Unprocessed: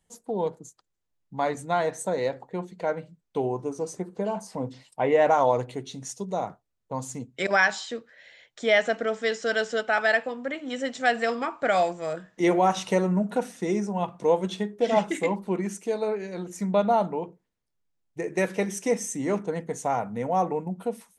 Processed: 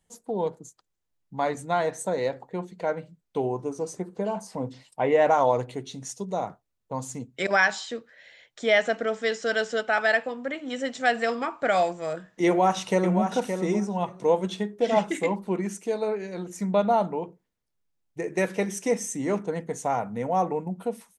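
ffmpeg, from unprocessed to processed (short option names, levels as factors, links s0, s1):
-filter_complex "[0:a]asplit=2[s0][s1];[s1]afade=t=in:st=12.46:d=0.01,afade=t=out:st=13.31:d=0.01,aecho=0:1:570|1140:0.446684|0.0446684[s2];[s0][s2]amix=inputs=2:normalize=0"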